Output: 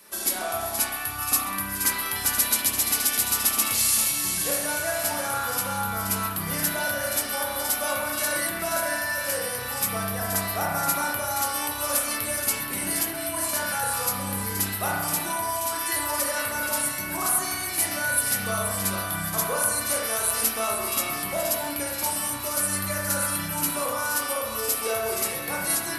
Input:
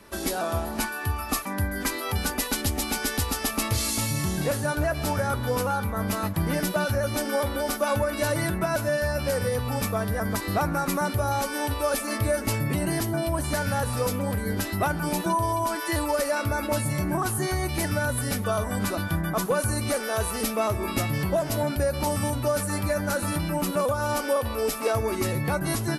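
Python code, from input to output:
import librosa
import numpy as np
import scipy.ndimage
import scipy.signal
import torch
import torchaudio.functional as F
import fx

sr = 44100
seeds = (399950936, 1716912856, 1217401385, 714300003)

y = fx.riaa(x, sr, side='recording')
y = fx.echo_split(y, sr, split_hz=1800.0, low_ms=92, high_ms=475, feedback_pct=52, wet_db=-7.5)
y = fx.rev_spring(y, sr, rt60_s=1.2, pass_ms=(31,), chirp_ms=45, drr_db=-2.5)
y = F.gain(torch.from_numpy(y), -5.5).numpy()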